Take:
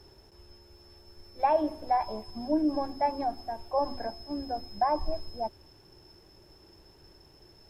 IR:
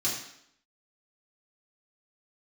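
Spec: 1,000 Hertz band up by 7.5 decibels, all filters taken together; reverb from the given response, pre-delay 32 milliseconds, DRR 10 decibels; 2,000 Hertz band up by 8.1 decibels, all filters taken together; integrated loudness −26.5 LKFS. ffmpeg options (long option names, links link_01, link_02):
-filter_complex "[0:a]equalizer=frequency=1000:width_type=o:gain=9,equalizer=frequency=2000:width_type=o:gain=7,asplit=2[link_01][link_02];[1:a]atrim=start_sample=2205,adelay=32[link_03];[link_02][link_03]afir=irnorm=-1:irlink=0,volume=-17dB[link_04];[link_01][link_04]amix=inputs=2:normalize=0,volume=-1.5dB"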